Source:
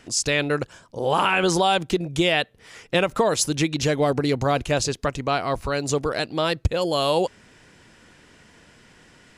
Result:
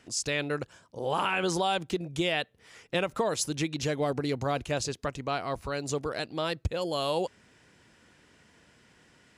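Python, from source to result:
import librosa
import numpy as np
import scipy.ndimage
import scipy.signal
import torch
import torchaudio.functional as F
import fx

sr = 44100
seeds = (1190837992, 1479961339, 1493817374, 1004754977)

y = scipy.signal.sosfilt(scipy.signal.butter(2, 45.0, 'highpass', fs=sr, output='sos'), x)
y = y * 10.0 ** (-8.0 / 20.0)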